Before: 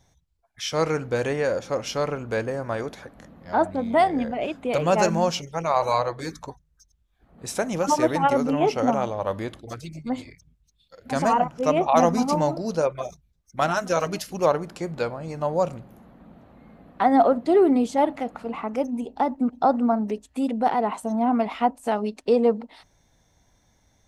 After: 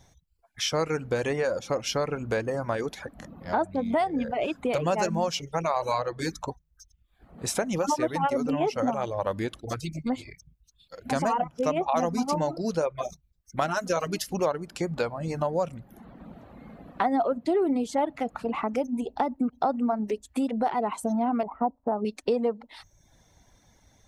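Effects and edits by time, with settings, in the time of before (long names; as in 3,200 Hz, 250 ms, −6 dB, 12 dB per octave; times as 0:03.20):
0:21.43–0:22.05: low-pass filter 1,100 Hz 24 dB per octave
whole clip: reverb reduction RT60 0.59 s; downward compressor 3 to 1, threshold −30 dBFS; level +4.5 dB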